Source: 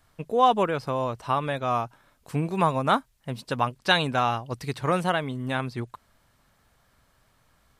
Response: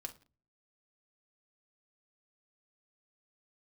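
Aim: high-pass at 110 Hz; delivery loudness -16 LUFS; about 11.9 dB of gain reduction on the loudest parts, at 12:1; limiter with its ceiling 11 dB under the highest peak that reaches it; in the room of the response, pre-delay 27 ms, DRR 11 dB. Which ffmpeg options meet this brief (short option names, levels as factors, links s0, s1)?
-filter_complex "[0:a]highpass=110,acompressor=threshold=0.0501:ratio=12,alimiter=level_in=1.26:limit=0.0631:level=0:latency=1,volume=0.794,asplit=2[s0][s1];[1:a]atrim=start_sample=2205,adelay=27[s2];[s1][s2]afir=irnorm=-1:irlink=0,volume=0.398[s3];[s0][s3]amix=inputs=2:normalize=0,volume=11.2"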